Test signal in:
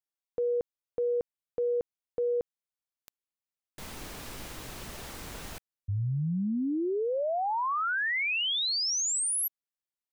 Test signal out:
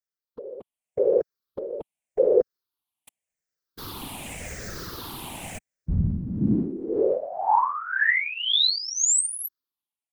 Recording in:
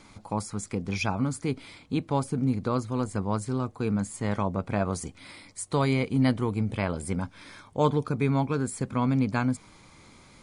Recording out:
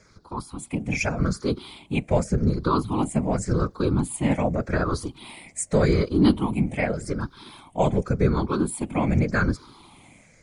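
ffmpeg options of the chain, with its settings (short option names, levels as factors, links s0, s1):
-af "afftfilt=real='re*pow(10,15/40*sin(2*PI*(0.55*log(max(b,1)*sr/1024/100)/log(2)-(-0.86)*(pts-256)/sr)))':imag='im*pow(10,15/40*sin(2*PI*(0.55*log(max(b,1)*sr/1024/100)/log(2)-(-0.86)*(pts-256)/sr)))':win_size=1024:overlap=0.75,dynaudnorm=f=320:g=5:m=2.82,afftfilt=real='hypot(re,im)*cos(2*PI*random(0))':imag='hypot(re,im)*sin(2*PI*random(1))':win_size=512:overlap=0.75"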